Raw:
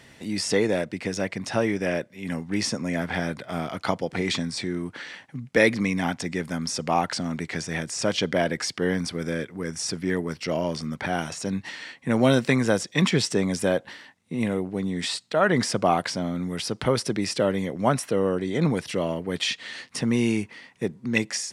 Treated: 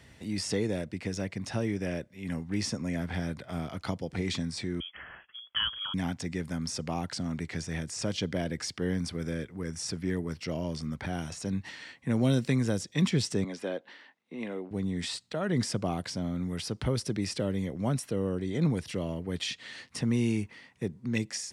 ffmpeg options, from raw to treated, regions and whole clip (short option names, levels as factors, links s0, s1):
-filter_complex "[0:a]asettb=1/sr,asplit=3[s0][s1][s2];[s0]atrim=end=4.804[s3];[s1]atrim=start=4.8:end=5.94,asetpts=PTS-STARTPTS,afade=t=in:d=0.004:c=qsin,afade=t=out:st=1.136:d=0.004:c=qsin,equalizer=f=110:t=o:w=2.1:g=-7,lowpass=f=3000:t=q:w=0.5098,lowpass=f=3000:t=q:w=0.6013,lowpass=f=3000:t=q:w=0.9,lowpass=f=3000:t=q:w=2.563,afreqshift=-3500[s4];[s2]atrim=start=5.936[s5];[s3][s4]acrossfade=d=0.004:c1=hsin:c2=qsin[s6];[s6][s5]acrossfade=d=0.004:c1=qsin:c2=hsin,asettb=1/sr,asplit=3[s7][s8][s9];[s7]atrim=end=13.444[s10];[s8]atrim=start=13.44:end=14.71,asetpts=PTS-STARTPTS,afade=t=in:d=0.004:c=qsin,afade=t=out:st=1.266:d=0.004:c=qsin,highpass=f=160:p=1,acrossover=split=230 4700:gain=0.0631 1 0.141[s11][s12][s13];[s11][s12][s13]amix=inputs=3:normalize=0[s14];[s9]atrim=start=14.706[s15];[s10][s14]acrossfade=d=0.004:c1=hsin:c2=qsin[s16];[s16][s15]acrossfade=d=0.004:c1=qsin:c2=hsin,equalizer=f=65:t=o:w=1.7:g=12.5,acrossover=split=430|3000[s17][s18][s19];[s18]acompressor=threshold=0.0158:ratio=2[s20];[s17][s20][s19]amix=inputs=3:normalize=0,volume=0.473"